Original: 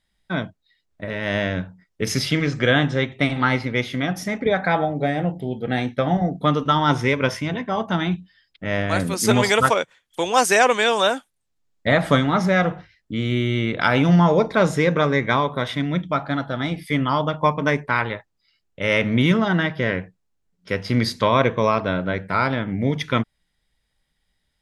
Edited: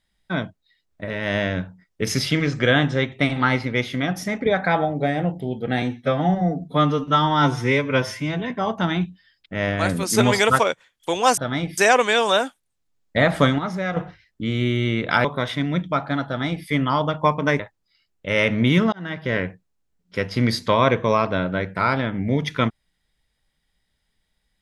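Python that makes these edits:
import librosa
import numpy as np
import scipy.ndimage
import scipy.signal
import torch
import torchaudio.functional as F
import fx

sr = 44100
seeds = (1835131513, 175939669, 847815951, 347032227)

y = fx.edit(x, sr, fx.stretch_span(start_s=5.82, length_s=1.79, factor=1.5),
    fx.clip_gain(start_s=12.29, length_s=0.38, db=-7.5),
    fx.cut(start_s=13.95, length_s=1.49),
    fx.duplicate(start_s=16.46, length_s=0.4, to_s=10.48),
    fx.cut(start_s=17.79, length_s=0.34),
    fx.fade_in_span(start_s=19.46, length_s=0.44), tone=tone)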